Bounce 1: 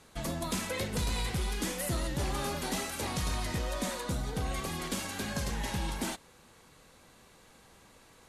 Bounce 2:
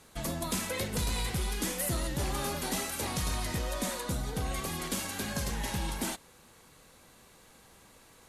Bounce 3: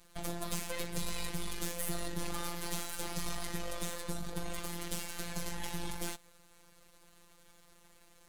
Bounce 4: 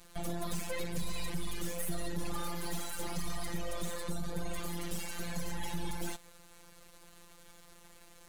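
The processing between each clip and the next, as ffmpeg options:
ffmpeg -i in.wav -af "highshelf=frequency=11000:gain=9.5" out.wav
ffmpeg -i in.wav -af "aeval=exprs='max(val(0),0)':channel_layout=same,afftfilt=real='hypot(re,im)*cos(PI*b)':imag='0':win_size=1024:overlap=0.75,volume=2dB" out.wav
ffmpeg -i in.wav -af "asoftclip=type=tanh:threshold=-29dB,volume=5dB" out.wav

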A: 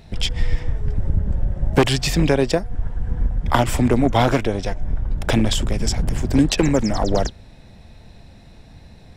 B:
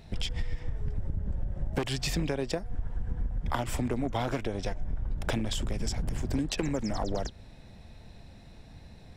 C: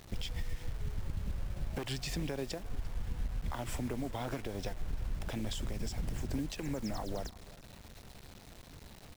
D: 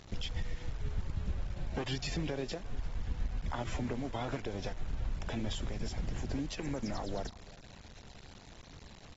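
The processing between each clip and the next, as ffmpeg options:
ffmpeg -i in.wav -af "acompressor=threshold=-21dB:ratio=6,volume=-5.5dB" out.wav
ffmpeg -i in.wav -af "alimiter=limit=-22.5dB:level=0:latency=1:release=127,acrusher=bits=7:mix=0:aa=0.000001,aecho=1:1:346:0.0944,volume=-4.5dB" out.wav
ffmpeg -i in.wav -ar 44100 -c:a aac -b:a 24k out.aac

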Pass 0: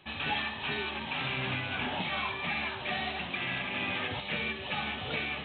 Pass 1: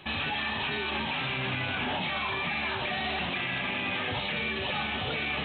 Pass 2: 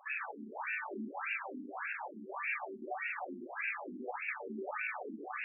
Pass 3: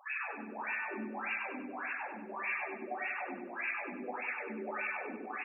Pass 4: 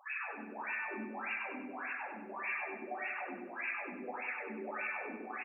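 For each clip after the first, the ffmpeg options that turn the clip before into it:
ffmpeg -i in.wav -af "alimiter=level_in=8dB:limit=-24dB:level=0:latency=1:release=24,volume=-8dB,volume=9dB" out.wav
ffmpeg -i in.wav -af "afftfilt=real='re*between(b*sr/1024,260*pow(2000/260,0.5+0.5*sin(2*PI*1.7*pts/sr))/1.41,260*pow(2000/260,0.5+0.5*sin(2*PI*1.7*pts/sr))*1.41)':imag='im*between(b*sr/1024,260*pow(2000/260,0.5+0.5*sin(2*PI*1.7*pts/sr))/1.41,260*pow(2000/260,0.5+0.5*sin(2*PI*1.7*pts/sr))*1.41)':win_size=1024:overlap=0.75,volume=-1.5dB" out.wav
ffmpeg -i in.wav -af "aecho=1:1:97|194|291|388|485|582:0.562|0.253|0.114|0.0512|0.0231|0.0104" out.wav
ffmpeg -i in.wav -af "aecho=1:1:62|124|186|248|310:0.178|0.0996|0.0558|0.0312|0.0175,volume=-2dB" out.wav

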